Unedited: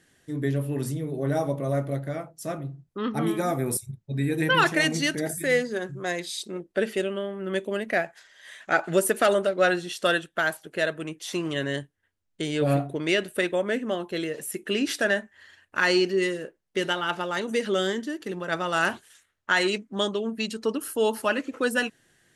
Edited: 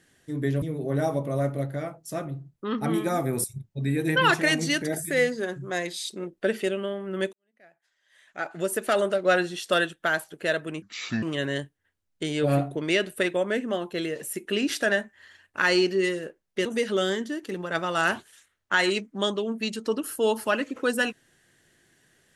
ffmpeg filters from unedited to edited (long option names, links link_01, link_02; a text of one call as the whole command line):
ffmpeg -i in.wav -filter_complex "[0:a]asplit=6[link_01][link_02][link_03][link_04][link_05][link_06];[link_01]atrim=end=0.622[link_07];[link_02]atrim=start=0.948:end=7.66,asetpts=PTS-STARTPTS,afade=type=out:start_time=6.708:duration=0.004:curve=hsin[link_08];[link_03]atrim=start=7.66:end=11.154,asetpts=PTS-STARTPTS,afade=type=in:duration=1.87:curve=qua[link_09];[link_04]atrim=start=11.15:end=11.41,asetpts=PTS-STARTPTS,asetrate=28224,aresample=44100[link_10];[link_05]atrim=start=11.406:end=16.842[link_11];[link_06]atrim=start=17.428[link_12];[link_08][link_09]concat=n=2:v=0:a=1[link_13];[link_07][link_13]acrossfade=duration=0.004:curve1=hsin:curve2=hsin[link_14];[link_14][link_10]acrossfade=duration=0.004:curve1=hsin:curve2=hsin[link_15];[link_15][link_11]acrossfade=duration=0.004:curve1=hsin:curve2=hsin[link_16];[link_16][link_12]acrossfade=duration=0.004:curve1=hsin:curve2=hsin" out.wav